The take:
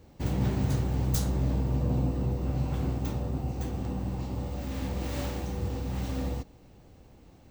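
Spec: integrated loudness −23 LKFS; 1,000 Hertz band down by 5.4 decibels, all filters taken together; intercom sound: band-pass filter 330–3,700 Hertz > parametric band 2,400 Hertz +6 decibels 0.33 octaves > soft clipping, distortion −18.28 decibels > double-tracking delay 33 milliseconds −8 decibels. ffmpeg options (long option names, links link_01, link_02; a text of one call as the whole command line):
ffmpeg -i in.wav -filter_complex "[0:a]highpass=330,lowpass=3700,equalizer=frequency=1000:width_type=o:gain=-7.5,equalizer=frequency=2400:width_type=o:width=0.33:gain=6,asoftclip=threshold=-33dB,asplit=2[link_01][link_02];[link_02]adelay=33,volume=-8dB[link_03];[link_01][link_03]amix=inputs=2:normalize=0,volume=19dB" out.wav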